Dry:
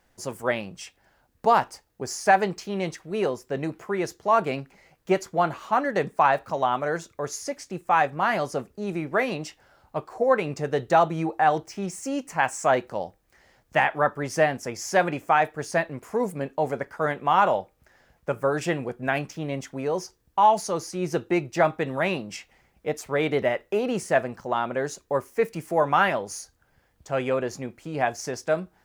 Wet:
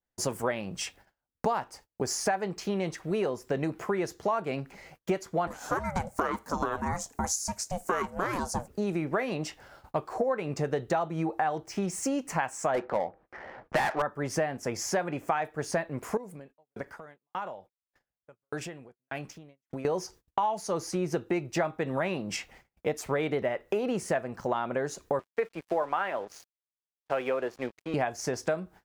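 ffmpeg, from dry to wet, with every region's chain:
ffmpeg -i in.wav -filter_complex "[0:a]asettb=1/sr,asplit=3[link_01][link_02][link_03];[link_01]atrim=end=5.474[link_04];[link_02]atrim=start=5.47:end=8.68,asetpts=PTS-STARTPTS,afade=type=in:duration=0.004:curve=qsin,afade=type=out:start_time=3.206:duration=0.004:curve=qsin,highshelf=frequency=4700:width_type=q:width=1.5:gain=11.5,aeval=exprs='val(0)*sin(2*PI*360*n/s)':channel_layout=same[link_05];[link_03]atrim=start=8.676[link_06];[link_04][link_05]acrossfade=duration=0.004:curve1=hsin:curve2=qsin[link_07];[link_07][link_06]acrossfade=duration=0.004:curve1=qsin:curve2=hsin,asettb=1/sr,asplit=3[link_08][link_09][link_10];[link_08]atrim=end=12.744[link_11];[link_09]atrim=start=12.74:end=14.02,asetpts=PTS-STARTPTS,afade=type=in:duration=0.004:curve=qsin,afade=type=out:start_time=1.276:duration=0.004:curve=qsin,asplit=2[link_12][link_13];[link_13]highpass=frequency=720:poles=1,volume=21dB,asoftclip=type=tanh:threshold=-7.5dB[link_14];[link_12][link_14]amix=inputs=2:normalize=0,lowpass=frequency=1800:poles=1,volume=-6dB,adynamicsmooth=sensitivity=5:basefreq=1400[link_15];[link_10]atrim=start=14.016[link_16];[link_11][link_15]acrossfade=duration=0.004:curve1=hsin:curve2=qsin[link_17];[link_17][link_16]acrossfade=duration=0.004:curve1=qsin:curve2=hsin,asettb=1/sr,asplit=3[link_18][link_19][link_20];[link_18]atrim=end=16.174[link_21];[link_19]atrim=start=16.17:end=19.85,asetpts=PTS-STARTPTS,afade=type=in:duration=0.004:curve=qsin,afade=type=out:start_time=3.676:duration=0.004:curve=qsin,acompressor=threshold=-35dB:ratio=6:attack=3.2:release=140:knee=1:detection=peak,aeval=exprs='val(0)*pow(10,-32*if(lt(mod(1.7*n/s,1),2*abs(1.7)/1000),1-mod(1.7*n/s,1)/(2*abs(1.7)/1000),(mod(1.7*n/s,1)-2*abs(1.7)/1000)/(1-2*abs(1.7)/1000))/20)':channel_layout=same[link_22];[link_20]atrim=start=19.846[link_23];[link_21][link_22]acrossfade=duration=0.004:curve1=hsin:curve2=qsin[link_24];[link_24][link_23]acrossfade=duration=0.004:curve1=qsin:curve2=hsin,asettb=1/sr,asplit=3[link_25][link_26][link_27];[link_25]atrim=end=25.194[link_28];[link_26]atrim=start=25.19:end=27.94,asetpts=PTS-STARTPTS,afade=type=in:duration=0.004:curve=qsin,afade=type=out:start_time=2.746:duration=0.004:curve=qsin,acrossover=split=290 4400:gain=0.178 1 0.112[link_29][link_30][link_31];[link_29][link_30][link_31]amix=inputs=3:normalize=0,aeval=exprs='sgn(val(0))*max(abs(val(0))-0.00376,0)':channel_layout=same[link_32];[link_27]atrim=start=27.936[link_33];[link_28][link_32]acrossfade=duration=0.004:curve1=hsin:curve2=qsin[link_34];[link_34][link_33]acrossfade=duration=0.004:curve1=qsin:curve2=hsin,acompressor=threshold=-33dB:ratio=6,agate=range=-32dB:threshold=-58dB:ratio=16:detection=peak,adynamicequalizer=threshold=0.00316:dfrequency=2000:dqfactor=0.7:tfrequency=2000:tqfactor=0.7:attack=5:release=100:ratio=0.375:range=3:mode=cutabove:tftype=highshelf,volume=6.5dB" out.wav

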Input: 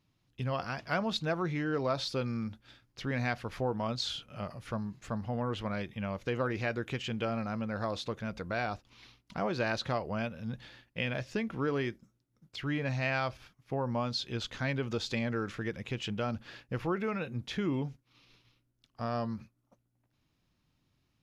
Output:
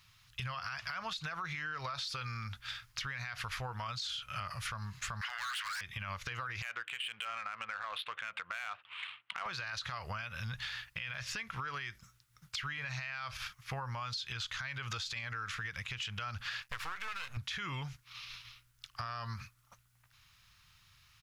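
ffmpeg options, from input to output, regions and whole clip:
ffmpeg -i in.wav -filter_complex "[0:a]asettb=1/sr,asplit=3[link_01][link_02][link_03];[link_01]atrim=end=5.214[link_04];[link_02]atrim=start=5.21:end=5.81,asetpts=PTS-STARTPTS,afade=type=in:duration=0.004:curve=qsin,afade=type=out:start_time=0.596:duration=0.004:curve=qsin,highpass=frequency=1600:width_type=q:width=3.2,asplit=2[link_05][link_06];[link_06]highpass=frequency=720:poles=1,volume=19dB,asoftclip=type=tanh:threshold=-23.5dB[link_07];[link_05][link_07]amix=inputs=2:normalize=0,lowpass=frequency=5400:poles=1,volume=-6dB,aeval=exprs='0.0282*(abs(mod(val(0)/0.0282+3,4)-2)-1)':channel_layout=same[link_08];[link_03]atrim=start=5.806[link_09];[link_04][link_08]acrossfade=duration=0.004:curve1=hsin:curve2=qsin[link_10];[link_10][link_09]acrossfade=duration=0.004:curve1=qsin:curve2=hsin,asettb=1/sr,asplit=3[link_11][link_12][link_13];[link_11]atrim=end=6.624[link_14];[link_12]atrim=start=6.62:end=9.46,asetpts=PTS-STARTPTS,afade=type=in:duration=0.004:curve=qsin,afade=type=out:start_time=2.836:duration=0.004:curve=qsin,highpass=400,highshelf=frequency=4400:width_type=q:width=3:gain=-13,adynamicsmooth=sensitivity=7.5:basefreq=2000[link_15];[link_13]atrim=start=9.456[link_16];[link_14][link_15]acrossfade=duration=0.004:curve1=hsin:curve2=qsin[link_17];[link_17][link_16]acrossfade=duration=0.004:curve1=qsin:curve2=hsin,asettb=1/sr,asplit=3[link_18][link_19][link_20];[link_18]atrim=end=16.624[link_21];[link_19]atrim=start=16.62:end=17.37,asetpts=PTS-STARTPTS,afade=type=in:duration=0.004:curve=qsin,afade=type=out:start_time=0.746:duration=0.004:curve=qsin,bass=frequency=250:gain=-7,treble=frequency=4000:gain=4,aeval=exprs='max(val(0),0)':channel_layout=same[link_22];[link_20]atrim=start=17.366[link_23];[link_21][link_22]acrossfade=duration=0.004:curve1=hsin:curve2=qsin[link_24];[link_24][link_23]acrossfade=duration=0.004:curve1=qsin:curve2=hsin,firequalizer=gain_entry='entry(100,0);entry(250,-22);entry(1200,8)':delay=0.05:min_phase=1,alimiter=level_in=6.5dB:limit=-24dB:level=0:latency=1:release=93,volume=-6.5dB,acompressor=threshold=-46dB:ratio=6,volume=9dB" out.wav

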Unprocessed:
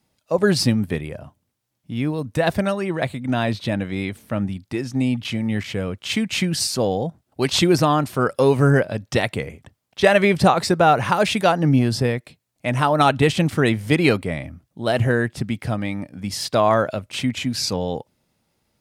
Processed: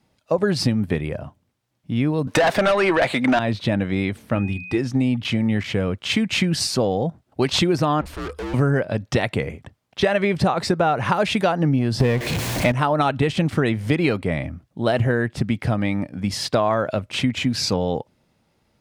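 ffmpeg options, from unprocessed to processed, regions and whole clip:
ffmpeg -i in.wav -filter_complex "[0:a]asettb=1/sr,asplit=3[link_01][link_02][link_03];[link_01]atrim=end=2.274[link_04];[link_02]atrim=start=2.27:end=3.39,asetpts=PTS-STARTPTS,afade=type=in:duration=0.004:curve=qsin,afade=type=out:start_time=1.116:duration=0.004:curve=qsin,highpass=frequency=250:poles=1,asplit=2[link_05][link_06];[link_06]highpass=frequency=720:poles=1,volume=26dB,asoftclip=type=tanh:threshold=-4dB[link_07];[link_05][link_07]amix=inputs=2:normalize=0,lowpass=frequency=5700:poles=1,volume=-6dB[link_08];[link_03]atrim=start=3.386[link_09];[link_04][link_08]acrossfade=duration=0.004:curve1=hsin:curve2=qsin[link_10];[link_10][link_09]acrossfade=duration=0.004:curve1=qsin:curve2=hsin,asettb=1/sr,asplit=3[link_11][link_12][link_13];[link_11]atrim=end=4.354[link_14];[link_12]atrim=start=4.35:end=4.78,asetpts=PTS-STARTPTS,afade=type=in:duration=0.004:curve=qsin,afade=type=out:start_time=0.426:duration=0.004:curve=qsin,bandreject=frequency=60:width_type=h:width=6,bandreject=frequency=120:width_type=h:width=6,bandreject=frequency=180:width_type=h:width=6,bandreject=frequency=240:width_type=h:width=6,aecho=1:1:2.5:0.35,atrim=end_sample=18963,aeval=exprs='val(0)+0.0141*sin(2*PI*2500*n/s)':channel_layout=same[link_15];[link_13]atrim=start=4.776[link_16];[link_14][link_15]acrossfade=duration=0.004:curve1=hsin:curve2=qsin[link_17];[link_17][link_16]acrossfade=duration=0.004:curve1=qsin:curve2=hsin,asettb=1/sr,asplit=3[link_18][link_19][link_20];[link_18]atrim=end=8.014[link_21];[link_19]atrim=start=8.01:end=8.54,asetpts=PTS-STARTPTS,afade=type=in:duration=0.004:curve=qsin,afade=type=out:start_time=0.526:duration=0.004:curve=qsin,aeval=exprs='(tanh(44.7*val(0)+0.3)-tanh(0.3))/44.7':channel_layout=same,afreqshift=-76[link_22];[link_20]atrim=start=8.536[link_23];[link_21][link_22]acrossfade=duration=0.004:curve1=hsin:curve2=qsin[link_24];[link_24][link_23]acrossfade=duration=0.004:curve1=qsin:curve2=hsin,asettb=1/sr,asplit=3[link_25][link_26][link_27];[link_25]atrim=end=12.004[link_28];[link_26]atrim=start=12:end=12.72,asetpts=PTS-STARTPTS,afade=type=in:duration=0.004:curve=qsin,afade=type=out:start_time=0.716:duration=0.004:curve=qsin,aeval=exprs='val(0)+0.5*0.0447*sgn(val(0))':channel_layout=same,acontrast=65,bandreject=frequency=1300:width=9.9[link_29];[link_27]atrim=start=12.716[link_30];[link_28][link_29]acrossfade=duration=0.004:curve1=hsin:curve2=qsin[link_31];[link_31][link_30]acrossfade=duration=0.004:curve1=qsin:curve2=hsin,lowpass=frequency=3600:poles=1,acompressor=threshold=-21dB:ratio=6,volume=5dB" out.wav

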